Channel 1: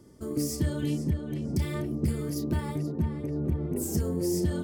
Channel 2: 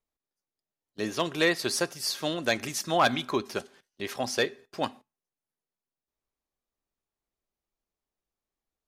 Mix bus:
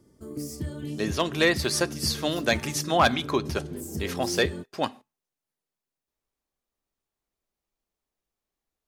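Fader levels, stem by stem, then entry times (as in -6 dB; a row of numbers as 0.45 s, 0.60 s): -5.5 dB, +2.5 dB; 0.00 s, 0.00 s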